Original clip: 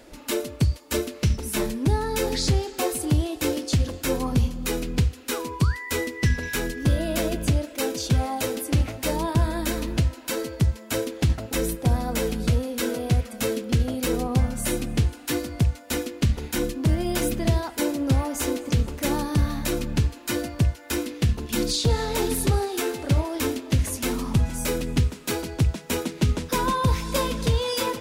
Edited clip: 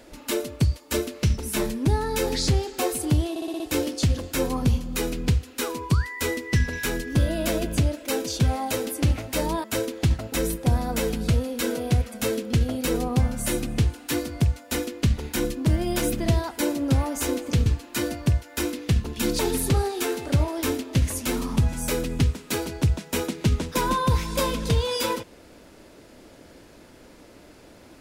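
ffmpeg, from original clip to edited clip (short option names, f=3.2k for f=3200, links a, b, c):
-filter_complex "[0:a]asplit=9[a][b][c][d][e][f][g][h][i];[a]atrim=end=3.362[j];[b]atrim=start=3.298:end=3.362[k];[c]atrim=start=3.298:end=3.362[l];[d]atrim=start=3.298:end=3.362[m];[e]atrim=start=3.298:end=3.362[n];[f]atrim=start=3.298:end=9.342[o];[g]atrim=start=10.828:end=18.852[p];[h]atrim=start=19.988:end=21.722[q];[i]atrim=start=22.158[r];[j][k]acrossfade=d=0.004:c1=hsin:c2=hsin[s];[s][l]acrossfade=d=0.004:c1=hsin:c2=hsin[t];[t][m]acrossfade=d=0.004:c1=hsin:c2=hsin[u];[u][n]acrossfade=d=0.004:c1=hsin:c2=hsin[v];[v][o]acrossfade=d=0.004:c1=hsin:c2=hsin[w];[w][p]acrossfade=d=0.004:c1=hsin:c2=hsin[x];[x][q]acrossfade=d=0.004:c1=hsin:c2=hsin[y];[y][r]acrossfade=d=0.004:c1=hsin:c2=hsin"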